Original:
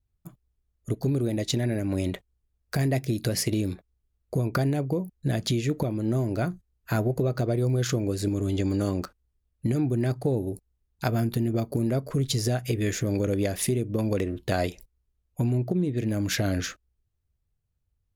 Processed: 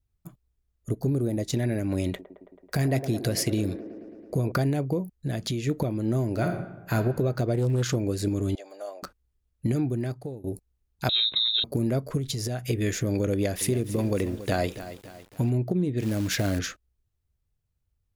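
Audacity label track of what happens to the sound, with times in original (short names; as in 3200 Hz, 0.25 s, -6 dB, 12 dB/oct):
0.900000	1.530000	bell 3000 Hz -9 dB 1.6 oct
2.080000	4.520000	band-limited delay 0.109 s, feedback 76%, band-pass 570 Hz, level -9 dB
5.110000	5.670000	compressor 1.5:1, threshold -31 dBFS
6.290000	6.940000	reverb throw, RT60 1 s, DRR 3 dB
7.540000	7.950000	Doppler distortion depth 0.26 ms
8.550000	9.030000	ladder high-pass 590 Hz, resonance 70%
9.740000	10.440000	fade out, to -20 dB
11.090000	11.640000	inverted band carrier 3900 Hz
12.170000	12.660000	compressor, threshold -26 dBFS
13.330000	15.500000	lo-fi delay 0.279 s, feedback 55%, word length 7-bit, level -12.5 dB
16.000000	16.590000	short-mantissa float mantissa of 2-bit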